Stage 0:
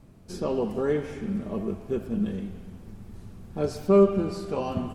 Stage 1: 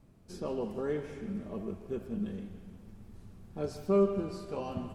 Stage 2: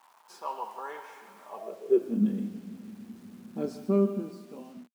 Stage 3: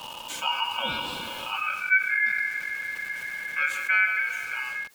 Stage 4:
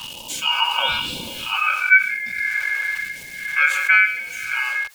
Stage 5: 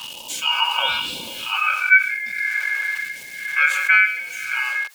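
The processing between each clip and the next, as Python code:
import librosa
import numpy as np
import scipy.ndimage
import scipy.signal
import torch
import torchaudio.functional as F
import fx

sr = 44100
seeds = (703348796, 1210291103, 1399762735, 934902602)

y1 = fx.echo_feedback(x, sr, ms=156, feedback_pct=57, wet_db=-16)
y1 = F.gain(torch.from_numpy(y1), -8.0).numpy()
y2 = fx.fade_out_tail(y1, sr, length_s=1.46)
y2 = fx.quant_dither(y2, sr, seeds[0], bits=10, dither='none')
y2 = fx.filter_sweep_highpass(y2, sr, from_hz=940.0, to_hz=230.0, start_s=1.48, end_s=2.22, q=6.1)
y3 = y2 + 0.73 * np.pad(y2, (int(3.0 * sr / 1000.0), 0))[:len(y2)]
y3 = y3 * np.sin(2.0 * np.pi * 1900.0 * np.arange(len(y3)) / sr)
y3 = fx.env_flatten(y3, sr, amount_pct=50)
y4 = fx.phaser_stages(y3, sr, stages=2, low_hz=160.0, high_hz=1400.0, hz=1.0, feedback_pct=25)
y4 = F.gain(torch.from_numpy(y4), 8.0).numpy()
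y5 = fx.low_shelf(y4, sr, hz=190.0, db=-12.0)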